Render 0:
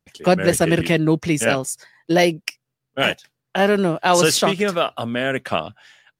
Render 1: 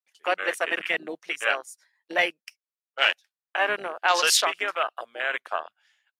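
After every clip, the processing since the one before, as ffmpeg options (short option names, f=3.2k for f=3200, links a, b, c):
-af "highpass=1k,afwtdn=0.0447"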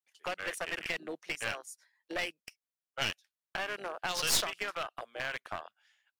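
-filter_complex "[0:a]acrossover=split=200|3000[a][b][c];[b]acompressor=threshold=-29dB:ratio=10[d];[a][d][c]amix=inputs=3:normalize=0,aeval=exprs='clip(val(0),-1,0.0299)':c=same,volume=-3.5dB"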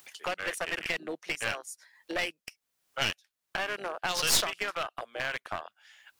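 -af "acompressor=mode=upward:threshold=-38dB:ratio=2.5,volume=3.5dB"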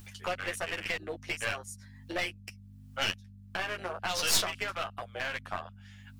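-af "aeval=exprs='val(0)+0.00562*(sin(2*PI*50*n/s)+sin(2*PI*2*50*n/s)/2+sin(2*PI*3*50*n/s)/3+sin(2*PI*4*50*n/s)/4+sin(2*PI*5*50*n/s)/5)':c=same,flanger=delay=9.8:depth=1.5:regen=-3:speed=1.2:shape=sinusoidal,volume=1.5dB"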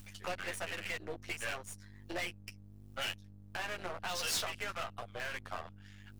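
-af "aeval=exprs='if(lt(val(0),0),0.251*val(0),val(0))':c=same"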